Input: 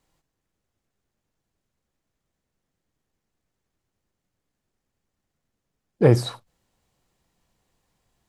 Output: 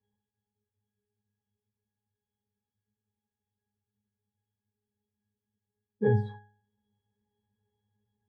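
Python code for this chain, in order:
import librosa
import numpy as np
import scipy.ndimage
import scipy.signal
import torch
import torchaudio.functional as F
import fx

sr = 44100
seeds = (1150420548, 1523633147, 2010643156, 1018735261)

y = fx.octave_resonator(x, sr, note='G#', decay_s=0.47)
y = y * 10.0 ** (8.5 / 20.0)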